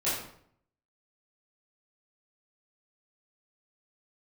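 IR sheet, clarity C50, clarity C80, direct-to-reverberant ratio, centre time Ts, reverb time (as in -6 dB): 1.5 dB, 5.5 dB, -11.5 dB, 56 ms, 0.65 s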